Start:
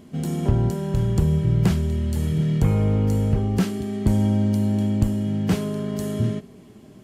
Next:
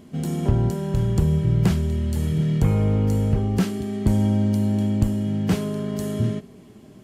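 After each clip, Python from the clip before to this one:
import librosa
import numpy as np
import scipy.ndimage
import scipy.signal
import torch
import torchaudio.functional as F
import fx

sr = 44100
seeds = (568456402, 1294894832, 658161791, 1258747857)

y = x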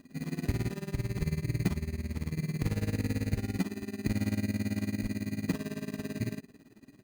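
y = fx.small_body(x, sr, hz=(280.0, 2600.0), ring_ms=90, db=12)
y = y * (1.0 - 0.88 / 2.0 + 0.88 / 2.0 * np.cos(2.0 * np.pi * 18.0 * (np.arange(len(y)) / sr)))
y = fx.sample_hold(y, sr, seeds[0], rate_hz=2200.0, jitter_pct=0)
y = y * 10.0 ** (-9.0 / 20.0)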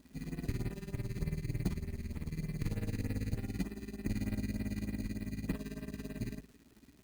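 y = fx.octave_divider(x, sr, octaves=2, level_db=-5.0)
y = fx.filter_lfo_notch(y, sr, shape='sine', hz=3.3, low_hz=580.0, high_hz=6800.0, q=1.4)
y = fx.dmg_crackle(y, sr, seeds[1], per_s=370.0, level_db=-47.0)
y = y * 10.0 ** (-6.0 / 20.0)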